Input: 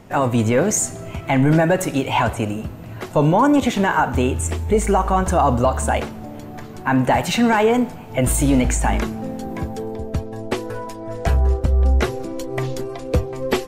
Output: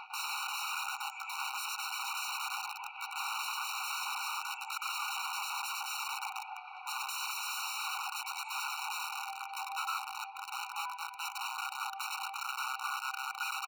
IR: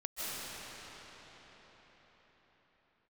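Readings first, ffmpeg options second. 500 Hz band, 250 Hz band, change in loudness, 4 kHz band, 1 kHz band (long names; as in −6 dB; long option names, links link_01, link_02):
below −40 dB, below −40 dB, −17.0 dB, −5.0 dB, −14.5 dB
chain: -filter_complex "[0:a]aeval=exprs='val(0)+0.5*0.0168*sgn(val(0))':channel_layout=same,highpass=frequency=410:width=0.5412,highpass=frequency=410:width=1.3066,equalizer=frequency=420:width_type=q:width=4:gain=6,equalizer=frequency=650:width_type=q:width=4:gain=7,equalizer=frequency=1100:width_type=q:width=4:gain=-6,equalizer=frequency=1600:width_type=q:width=4:gain=-5,equalizer=frequency=2300:width_type=q:width=4:gain=7,equalizer=frequency=3400:width_type=q:width=4:gain=-6,lowpass=frequency=3700:width=0.5412,lowpass=frequency=3700:width=1.3066,tremolo=f=4.9:d=0.85,aecho=1:1:100|210|331|464.1|610.5:0.631|0.398|0.251|0.158|0.1,asplit=2[link_01][link_02];[link_02]acompressor=threshold=-25dB:ratio=6,volume=-1dB[link_03];[link_01][link_03]amix=inputs=2:normalize=0,aeval=exprs='(mod(8.91*val(0)+1,2)-1)/8.91':channel_layout=same,alimiter=level_in=2.5dB:limit=-24dB:level=0:latency=1:release=81,volume=-2.5dB,equalizer=frequency=1600:width_type=o:width=2.8:gain=7,afftfilt=real='re*eq(mod(floor(b*sr/1024/750),2),1)':imag='im*eq(mod(floor(b*sr/1024/750),2),1)':win_size=1024:overlap=0.75,volume=-7dB"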